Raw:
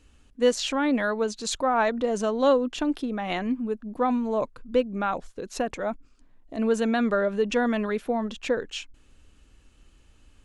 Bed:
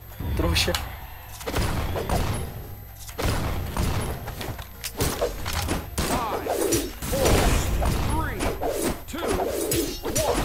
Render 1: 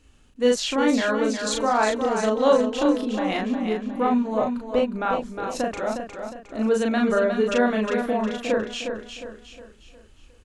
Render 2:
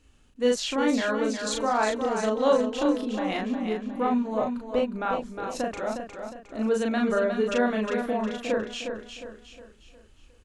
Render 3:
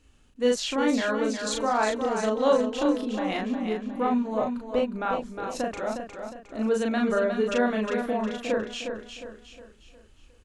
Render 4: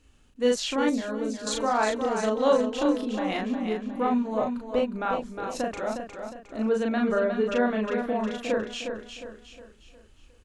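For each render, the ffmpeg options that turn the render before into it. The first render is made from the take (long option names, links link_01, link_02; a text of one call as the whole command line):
ffmpeg -i in.wav -filter_complex "[0:a]asplit=2[link_01][link_02];[link_02]adelay=37,volume=-2dB[link_03];[link_01][link_03]amix=inputs=2:normalize=0,aecho=1:1:359|718|1077|1436|1795:0.447|0.188|0.0788|0.0331|0.0139" out.wav
ffmpeg -i in.wav -af "volume=-3.5dB" out.wav
ffmpeg -i in.wav -af anull out.wav
ffmpeg -i in.wav -filter_complex "[0:a]asettb=1/sr,asplit=3[link_01][link_02][link_03];[link_01]atrim=end=0.894[link_04];[link_02]atrim=start=0.89:end=1.47,asetpts=PTS-STARTPTS,afade=type=in:duration=0.004:curve=qsin,afade=type=out:start_time=0.576:duration=0.004:curve=qsin,equalizer=frequency=1800:width=0.33:gain=-10.5[link_05];[link_03]atrim=start=1.466[link_06];[link_04][link_05]acrossfade=duration=0.004:curve1=hsin:curve2=qsin[link_07];[link_07][link_06]acrossfade=duration=0.004:curve1=qsin:curve2=hsin,asettb=1/sr,asplit=3[link_08][link_09][link_10];[link_08]atrim=end=6.624[link_11];[link_09]atrim=start=6.62:end=8.16,asetpts=PTS-STARTPTS,afade=type=in:duration=0.004:curve=qsin,afade=type=out:start_time=1.536:duration=0.004:curve=qsin,aemphasis=mode=reproduction:type=50kf[link_12];[link_10]atrim=start=8.156[link_13];[link_11][link_12]acrossfade=duration=0.004:curve1=hsin:curve2=qsin[link_14];[link_14][link_13]acrossfade=duration=0.004:curve1=qsin:curve2=hsin" out.wav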